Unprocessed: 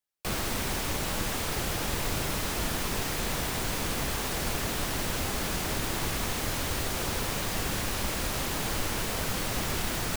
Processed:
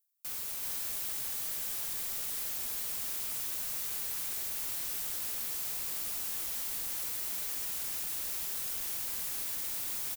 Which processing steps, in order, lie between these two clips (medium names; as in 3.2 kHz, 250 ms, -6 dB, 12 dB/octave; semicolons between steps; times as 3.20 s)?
hard clipper -25.5 dBFS, distortion -17 dB; treble shelf 8.8 kHz +7 dB; reverse; upward compressor, threshold -36 dBFS; reverse; pre-emphasis filter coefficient 0.9; saturation -36 dBFS, distortion -7 dB; on a send: delay 382 ms -3 dB